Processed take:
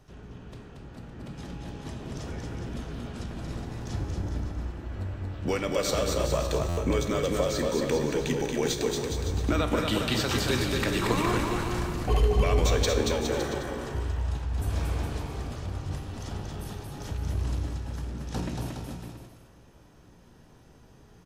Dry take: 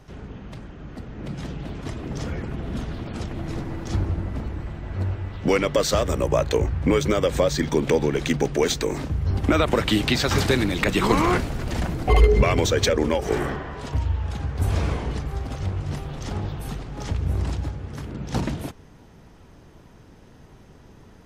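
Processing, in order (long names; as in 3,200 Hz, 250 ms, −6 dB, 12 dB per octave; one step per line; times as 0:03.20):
high-shelf EQ 5,900 Hz +5 dB
notch filter 2,100 Hz, Q 15
tuned comb filter 59 Hz, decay 0.95 s, harmonics all, mix 70%
on a send: bouncing-ball delay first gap 230 ms, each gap 0.8×, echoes 5
on the sum: buffer that repeats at 0:06.68, samples 512, times 7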